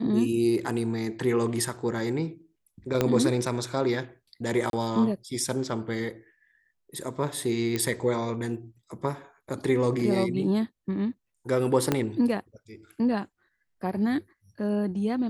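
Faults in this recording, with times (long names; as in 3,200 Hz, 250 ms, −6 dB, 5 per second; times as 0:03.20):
0:03.01: click −9 dBFS
0:04.70–0:04.73: drop-out 32 ms
0:07.76: click −14 dBFS
0:11.92: click −9 dBFS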